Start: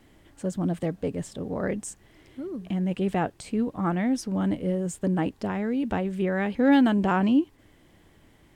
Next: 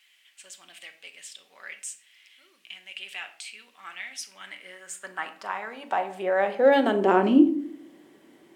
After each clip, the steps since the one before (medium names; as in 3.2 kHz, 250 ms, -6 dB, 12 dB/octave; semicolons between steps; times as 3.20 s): high-pass sweep 2.6 kHz -> 310 Hz, 4.15–7.45 s; simulated room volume 700 m³, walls furnished, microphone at 1.1 m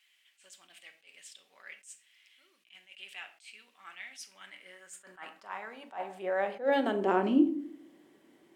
attacks held to a fixed rise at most 210 dB/s; trim -7 dB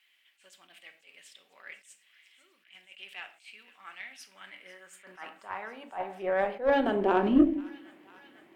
peaking EQ 7.4 kHz -9 dB 1.5 oct; Chebyshev shaper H 4 -22 dB, 8 -38 dB, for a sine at -12.5 dBFS; feedback echo behind a high-pass 496 ms, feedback 77%, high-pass 1.7 kHz, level -17 dB; trim +3 dB